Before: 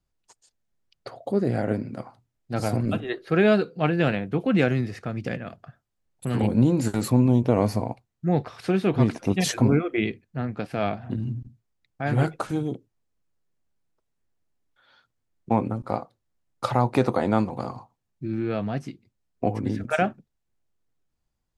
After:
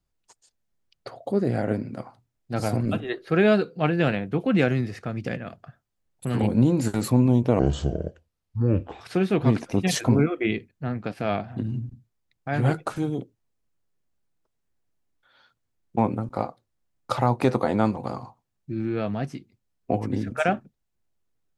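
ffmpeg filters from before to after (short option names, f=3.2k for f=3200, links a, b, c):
-filter_complex "[0:a]asplit=3[a][b][c];[a]atrim=end=7.594[d];[b]atrim=start=7.59:end=8.54,asetpts=PTS-STARTPTS,asetrate=29547,aresample=44100[e];[c]atrim=start=8.536[f];[d][e]acrossfade=d=0.004:c1=hsin:c2=hsin[g];[g][f]acrossfade=d=0.004:c1=hsin:c2=hsin"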